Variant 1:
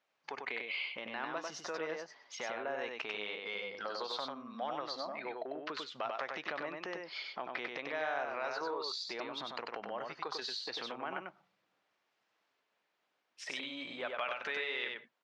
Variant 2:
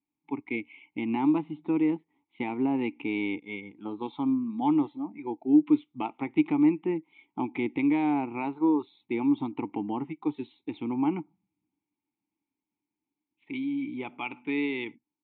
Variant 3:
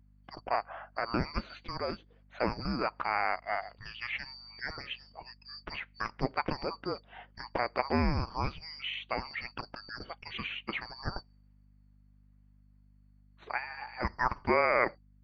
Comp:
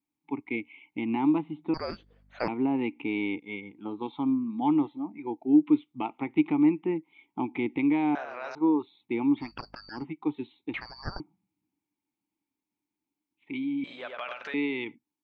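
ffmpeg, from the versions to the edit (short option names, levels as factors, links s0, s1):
-filter_complex "[2:a]asplit=3[s0][s1][s2];[0:a]asplit=2[s3][s4];[1:a]asplit=6[s5][s6][s7][s8][s9][s10];[s5]atrim=end=1.742[s11];[s0]atrim=start=1.738:end=2.482[s12];[s6]atrim=start=2.478:end=8.152[s13];[s3]atrim=start=8.148:end=8.552[s14];[s7]atrim=start=8.548:end=9.52[s15];[s1]atrim=start=9.36:end=10.06[s16];[s8]atrim=start=9.9:end=10.742[s17];[s2]atrim=start=10.738:end=11.202[s18];[s9]atrim=start=11.198:end=13.842[s19];[s4]atrim=start=13.838:end=14.542[s20];[s10]atrim=start=14.538[s21];[s11][s12]acrossfade=d=0.004:c1=hsin:c2=hsin[s22];[s22][s13]acrossfade=d=0.004:c1=hsin:c2=hsin[s23];[s23][s14]acrossfade=d=0.004:c1=hsin:c2=hsin[s24];[s24][s15]acrossfade=d=0.004:c1=hsin:c2=hsin[s25];[s25][s16]acrossfade=d=0.16:c1=tri:c2=tri[s26];[s26][s17]acrossfade=d=0.16:c1=tri:c2=tri[s27];[s27][s18]acrossfade=d=0.004:c1=hsin:c2=hsin[s28];[s28][s19]acrossfade=d=0.004:c1=hsin:c2=hsin[s29];[s29][s20]acrossfade=d=0.004:c1=hsin:c2=hsin[s30];[s30][s21]acrossfade=d=0.004:c1=hsin:c2=hsin"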